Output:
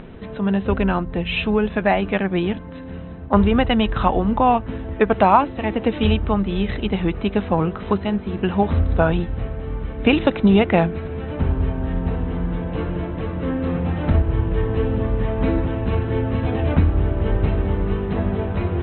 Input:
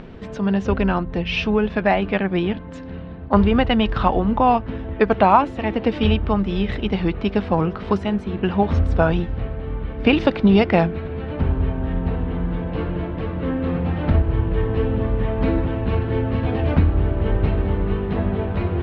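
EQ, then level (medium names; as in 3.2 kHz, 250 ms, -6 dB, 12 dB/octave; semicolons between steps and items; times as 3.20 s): brick-wall FIR low-pass 4.1 kHz; 0.0 dB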